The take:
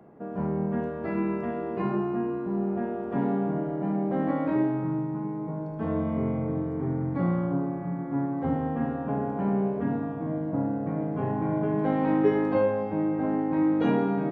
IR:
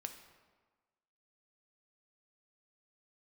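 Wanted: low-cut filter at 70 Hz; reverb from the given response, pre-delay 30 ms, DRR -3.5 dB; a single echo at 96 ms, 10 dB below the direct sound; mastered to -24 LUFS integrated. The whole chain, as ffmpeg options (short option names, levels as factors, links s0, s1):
-filter_complex "[0:a]highpass=70,aecho=1:1:96:0.316,asplit=2[s0][s1];[1:a]atrim=start_sample=2205,adelay=30[s2];[s1][s2]afir=irnorm=-1:irlink=0,volume=2.11[s3];[s0][s3]amix=inputs=2:normalize=0,volume=0.75"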